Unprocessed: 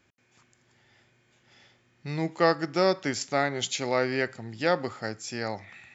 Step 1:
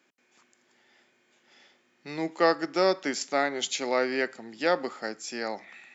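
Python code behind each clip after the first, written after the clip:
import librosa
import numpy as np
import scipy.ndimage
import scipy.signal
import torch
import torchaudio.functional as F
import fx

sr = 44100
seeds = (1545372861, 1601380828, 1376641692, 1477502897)

y = scipy.signal.sosfilt(scipy.signal.butter(4, 220.0, 'highpass', fs=sr, output='sos'), x)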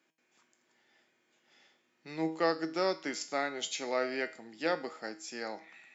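y = fx.comb_fb(x, sr, f0_hz=160.0, decay_s=0.43, harmonics='all', damping=0.0, mix_pct=70)
y = F.gain(torch.from_numpy(y), 2.0).numpy()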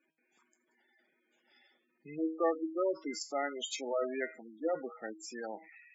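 y = fx.spec_gate(x, sr, threshold_db=-10, keep='strong')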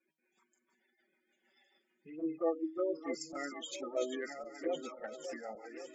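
y = fx.reverse_delay_fb(x, sr, ms=555, feedback_pct=60, wet_db=-7)
y = fx.rotary(y, sr, hz=6.7)
y = fx.env_flanger(y, sr, rest_ms=5.4, full_db=-30.0)
y = F.gain(torch.from_numpy(y), 1.0).numpy()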